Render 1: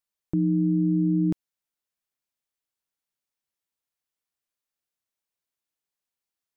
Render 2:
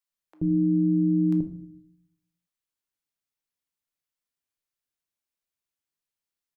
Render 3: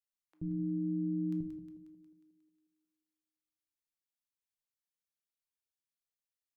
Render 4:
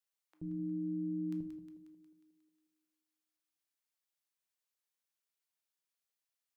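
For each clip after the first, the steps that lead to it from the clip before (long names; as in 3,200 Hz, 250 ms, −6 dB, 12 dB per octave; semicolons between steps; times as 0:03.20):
multiband delay without the direct sound highs, lows 80 ms, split 720 Hz; on a send at −7 dB: convolution reverb RT60 0.55 s, pre-delay 12 ms; on the sum: level −2.5 dB
parametric band 580 Hz −10.5 dB 2.5 octaves; on a send: feedback echo with a high-pass in the loop 180 ms, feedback 60%, high-pass 180 Hz, level −8 dB; on the sum: level −8 dB
low-shelf EQ 280 Hz −12 dB; level +3 dB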